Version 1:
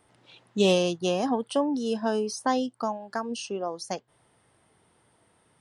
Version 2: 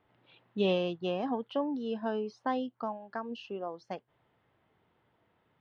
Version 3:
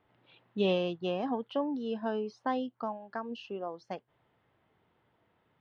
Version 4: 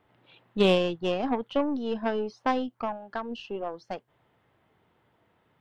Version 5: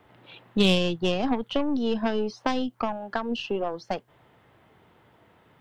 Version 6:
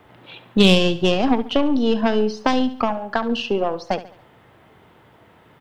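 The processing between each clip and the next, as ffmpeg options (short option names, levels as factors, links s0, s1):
-af "lowpass=f=3400:w=0.5412,lowpass=f=3400:w=1.3066,volume=0.473"
-af anull
-af "aeval=exprs='0.15*(cos(1*acos(clip(val(0)/0.15,-1,1)))-cos(1*PI/2))+0.0188*(cos(3*acos(clip(val(0)/0.15,-1,1)))-cos(3*PI/2))+0.00531*(cos(8*acos(clip(val(0)/0.15,-1,1)))-cos(8*PI/2))':c=same,volume=2.66"
-filter_complex "[0:a]acrossover=split=180|3000[s0][s1][s2];[s1]acompressor=threshold=0.02:ratio=6[s3];[s0][s3][s2]amix=inputs=3:normalize=0,volume=2.82"
-af "aecho=1:1:70|140|210|280:0.178|0.0765|0.0329|0.0141,volume=2.24"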